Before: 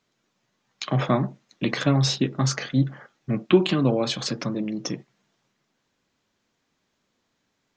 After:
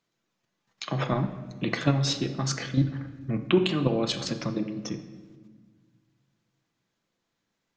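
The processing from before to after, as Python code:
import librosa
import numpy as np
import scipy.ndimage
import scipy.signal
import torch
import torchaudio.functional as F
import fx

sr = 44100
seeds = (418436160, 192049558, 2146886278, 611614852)

y = fx.level_steps(x, sr, step_db=9)
y = fx.room_shoebox(y, sr, seeds[0], volume_m3=1400.0, walls='mixed', distance_m=0.75)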